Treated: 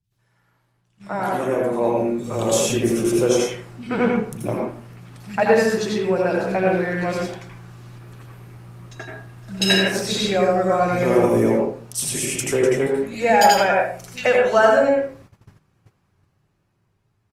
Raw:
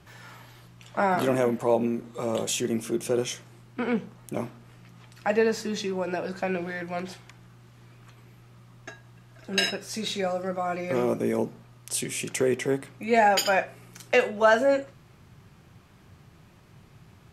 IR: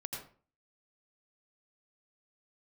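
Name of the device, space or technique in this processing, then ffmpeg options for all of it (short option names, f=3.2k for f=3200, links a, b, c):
speakerphone in a meeting room: -filter_complex "[0:a]asettb=1/sr,asplit=3[a][b][c];[a]atrim=end=12.034[d];[b]atrim=start=12.03:end=12.47,asetpts=PTS-STARTPTS,afade=t=in:d=0.004:c=qsin,afade=t=out:st=0.436:d=0.004:c=qsin,highshelf=f=4.5k:g=4[e];[c]atrim=start=12.466[f];[d][e]acrossfade=d=0.004:c1=hsin:c2=qsin[g];[g][f]acrossfade=d=0.004:c1=qsin:c2=hsin,acrossover=split=190|3000[h][i][j];[j]adelay=40[k];[i]adelay=120[l];[h][l][k]amix=inputs=3:normalize=0[m];[1:a]atrim=start_sample=2205[n];[m][n]afir=irnorm=-1:irlink=0,dynaudnorm=f=370:g=11:m=16dB,agate=range=-15dB:threshold=-43dB:ratio=16:detection=peak,volume=-1dB" -ar 48000 -c:a libopus -b:a 32k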